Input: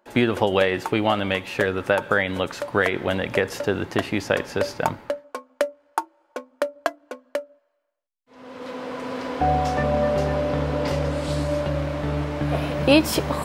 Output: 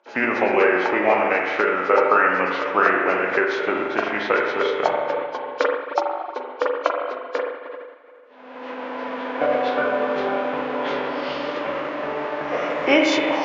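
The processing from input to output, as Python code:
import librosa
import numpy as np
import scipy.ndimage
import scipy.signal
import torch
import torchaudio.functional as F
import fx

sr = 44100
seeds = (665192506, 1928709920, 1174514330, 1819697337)

y = fx.freq_compress(x, sr, knee_hz=2600.0, ratio=1.5)
y = fx.rev_spring(y, sr, rt60_s=1.9, pass_ms=(38, 43), chirp_ms=35, drr_db=0.0)
y = fx.formant_shift(y, sr, semitones=-3)
y = fx.bandpass_edges(y, sr, low_hz=500.0, high_hz=5200.0)
y = y * 10.0 ** (4.0 / 20.0)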